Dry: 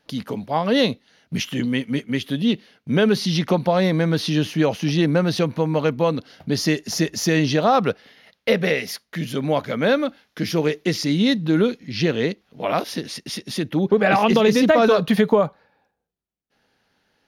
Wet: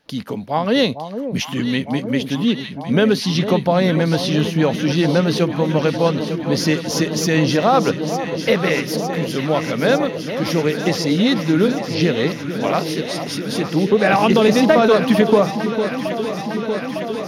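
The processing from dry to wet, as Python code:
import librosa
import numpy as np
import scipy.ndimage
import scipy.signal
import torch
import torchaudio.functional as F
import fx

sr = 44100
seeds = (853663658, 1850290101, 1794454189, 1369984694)

y = fx.echo_alternate(x, sr, ms=453, hz=980.0, feedback_pct=89, wet_db=-9)
y = y * librosa.db_to_amplitude(2.0)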